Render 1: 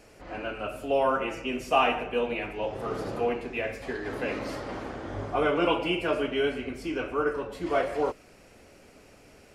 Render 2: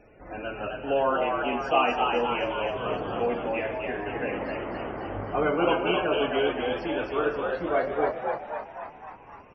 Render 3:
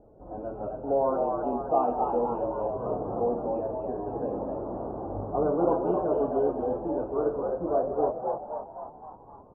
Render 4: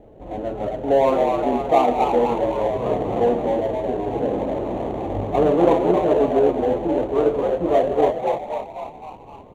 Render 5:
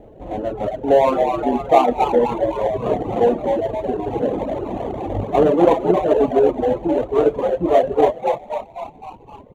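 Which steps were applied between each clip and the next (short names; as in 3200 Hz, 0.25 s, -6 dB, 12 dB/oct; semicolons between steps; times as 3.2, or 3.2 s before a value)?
Bessel low-pass 5700 Hz; loudest bins only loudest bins 64; frequency-shifting echo 0.261 s, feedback 59%, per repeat +81 Hz, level -4 dB
inverse Chebyshev low-pass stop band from 1900 Hz, stop band 40 dB
median filter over 25 samples; gain +9 dB
reverb removal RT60 1.4 s; gain +4 dB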